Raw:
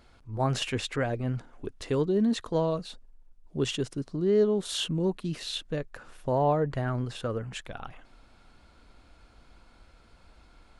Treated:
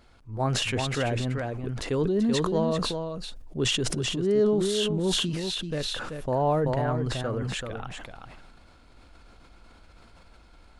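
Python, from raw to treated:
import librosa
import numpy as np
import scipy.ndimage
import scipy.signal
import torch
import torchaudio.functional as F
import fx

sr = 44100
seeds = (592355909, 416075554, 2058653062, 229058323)

p1 = x + fx.echo_single(x, sr, ms=384, db=-6.5, dry=0)
y = fx.sustainer(p1, sr, db_per_s=23.0)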